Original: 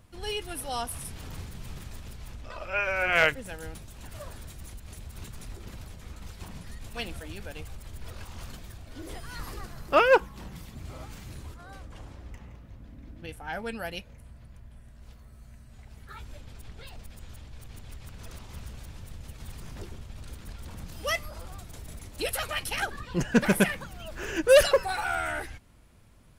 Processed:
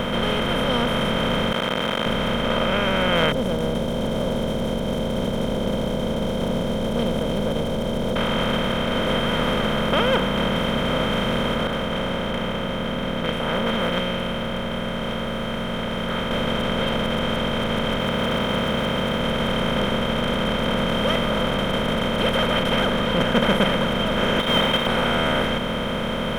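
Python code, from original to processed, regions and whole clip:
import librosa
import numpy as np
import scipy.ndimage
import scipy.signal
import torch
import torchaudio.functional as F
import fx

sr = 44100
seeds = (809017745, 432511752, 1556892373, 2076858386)

y = fx.chain(x, sr, fx.clip_1bit(),
    fx.highpass(hz=810.0, slope=12),
    fx.air_absorb(metres=55.0), at=(1.52, 2.06))
y = fx.chain(y, sr, fx.ellip_bandstop(low_hz=540.0, high_hz=6000.0, order=3, stop_db=50),
    fx.doppler_dist(depth_ms=0.11), at=(3.32, 8.16))
y = fx.chain(y, sr, fx.comb_fb(f0_hz=180.0, decay_s=0.98, harmonics='all', damping=0.0, mix_pct=80),
    fx.doppler_dist(depth_ms=0.63), at=(11.67, 16.31))
y = fx.chain(y, sr, fx.highpass(hz=100.0, slope=12),
    fx.resample_bad(factor=2, down='none', up='hold'), at=(17.99, 19.21))
y = fx.chain(y, sr, fx.freq_invert(carrier_hz=3700),
    fx.highpass(hz=58.0, slope=12),
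    fx.quant_companded(bits=4), at=(24.39, 24.87))
y = fx.bin_compress(y, sr, power=0.2)
y = fx.lowpass(y, sr, hz=2400.0, slope=6)
y = fx.low_shelf(y, sr, hz=190.0, db=8.0)
y = F.gain(torch.from_numpy(y), -6.5).numpy()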